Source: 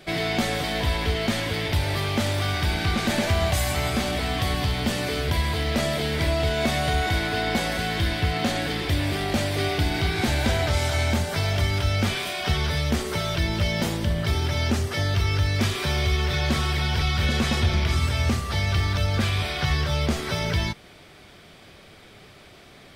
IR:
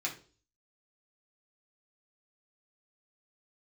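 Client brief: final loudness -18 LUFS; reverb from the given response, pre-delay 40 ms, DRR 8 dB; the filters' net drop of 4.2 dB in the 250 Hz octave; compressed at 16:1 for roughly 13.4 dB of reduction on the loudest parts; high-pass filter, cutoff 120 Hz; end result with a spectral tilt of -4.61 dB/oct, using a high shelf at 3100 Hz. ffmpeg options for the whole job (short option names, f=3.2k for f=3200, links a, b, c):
-filter_complex "[0:a]highpass=120,equalizer=f=250:t=o:g=-5,highshelf=f=3.1k:g=-5,acompressor=threshold=-36dB:ratio=16,asplit=2[a][b];[1:a]atrim=start_sample=2205,adelay=40[c];[b][c]afir=irnorm=-1:irlink=0,volume=-12dB[d];[a][d]amix=inputs=2:normalize=0,volume=21dB"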